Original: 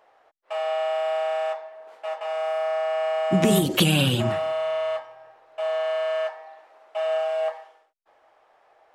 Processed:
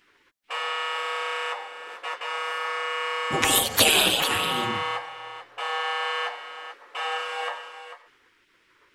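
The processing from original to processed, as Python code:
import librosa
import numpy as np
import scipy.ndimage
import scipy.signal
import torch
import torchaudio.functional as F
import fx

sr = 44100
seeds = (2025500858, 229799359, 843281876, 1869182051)

y = x + 10.0 ** (-11.0 / 20.0) * np.pad(x, (int(443 * sr / 1000.0), 0))[:len(x)]
y = fx.spec_gate(y, sr, threshold_db=-15, keep='weak')
y = F.gain(torch.from_numpy(y), 8.0).numpy()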